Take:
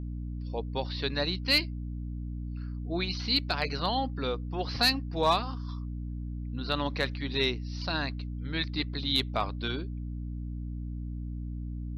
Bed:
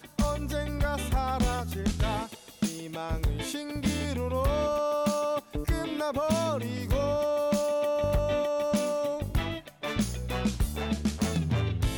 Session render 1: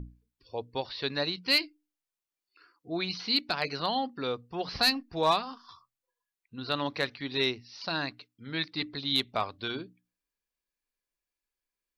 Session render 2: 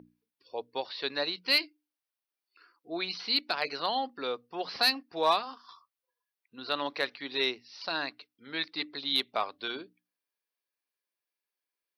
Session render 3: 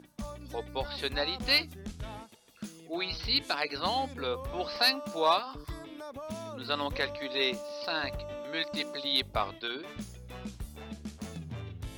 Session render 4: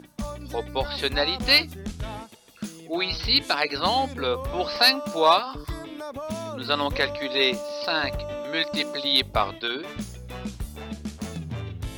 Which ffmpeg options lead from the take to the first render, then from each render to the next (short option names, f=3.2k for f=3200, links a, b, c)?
-af "bandreject=f=60:t=h:w=6,bandreject=f=120:t=h:w=6,bandreject=f=180:t=h:w=6,bandreject=f=240:t=h:w=6,bandreject=f=300:t=h:w=6"
-af "highpass=350,equalizer=f=7.1k:w=4:g=-11.5"
-filter_complex "[1:a]volume=-13dB[a];[0:a][a]amix=inputs=2:normalize=0"
-af "volume=7.5dB"